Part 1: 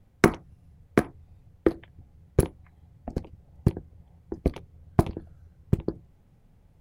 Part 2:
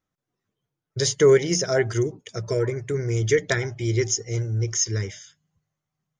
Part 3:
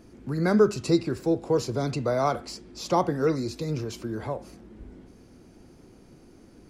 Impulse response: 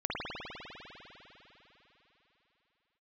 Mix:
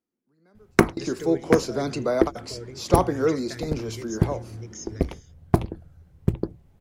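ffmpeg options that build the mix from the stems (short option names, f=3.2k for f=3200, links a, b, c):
-filter_complex "[0:a]bandreject=f=60:t=h:w=6,bandreject=f=120:t=h:w=6,adelay=550,volume=2dB[a];[1:a]acrossover=split=270[b][c];[c]acompressor=threshold=-24dB:ratio=2[d];[b][d]amix=inputs=2:normalize=0,volume=-14.5dB,asplit=2[e][f];[2:a]highpass=f=170:w=0.5412,highpass=f=170:w=1.3066,volume=2dB[g];[f]apad=whole_len=295147[h];[g][h]sidechaingate=range=-38dB:threshold=-53dB:ratio=16:detection=peak[i];[a][e][i]amix=inputs=3:normalize=0"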